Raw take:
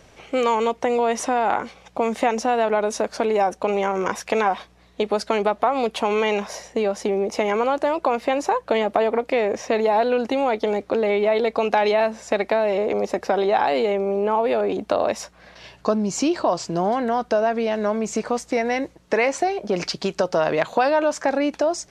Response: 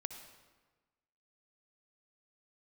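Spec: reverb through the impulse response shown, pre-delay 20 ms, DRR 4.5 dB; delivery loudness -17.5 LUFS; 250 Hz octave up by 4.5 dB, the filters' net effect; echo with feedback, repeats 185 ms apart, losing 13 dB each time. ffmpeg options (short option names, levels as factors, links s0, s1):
-filter_complex "[0:a]equalizer=f=250:t=o:g=5.5,aecho=1:1:185|370|555:0.224|0.0493|0.0108,asplit=2[s0][s1];[1:a]atrim=start_sample=2205,adelay=20[s2];[s1][s2]afir=irnorm=-1:irlink=0,volume=0.75[s3];[s0][s3]amix=inputs=2:normalize=0,volume=1.19"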